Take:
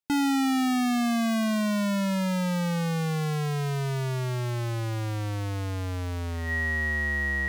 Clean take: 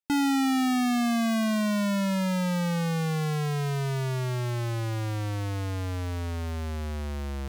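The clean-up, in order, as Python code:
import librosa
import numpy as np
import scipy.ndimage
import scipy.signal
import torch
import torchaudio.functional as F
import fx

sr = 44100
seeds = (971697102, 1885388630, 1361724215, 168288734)

y = fx.notch(x, sr, hz=1900.0, q=30.0)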